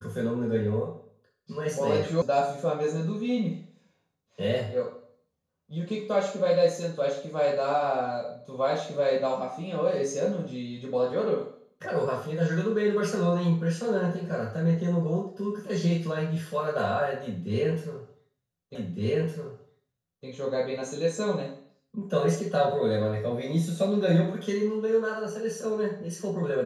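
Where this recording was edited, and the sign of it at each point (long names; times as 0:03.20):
0:02.22: cut off before it has died away
0:18.75: the same again, the last 1.51 s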